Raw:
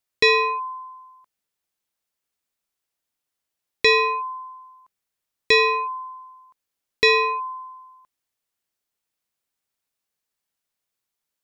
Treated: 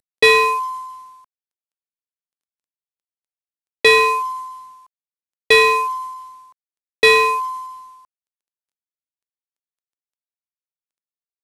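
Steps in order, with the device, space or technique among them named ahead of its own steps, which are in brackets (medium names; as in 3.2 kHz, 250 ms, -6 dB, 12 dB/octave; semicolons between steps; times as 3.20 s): early wireless headset (high-pass 250 Hz 24 dB/octave; CVSD coder 64 kbps); trim +6 dB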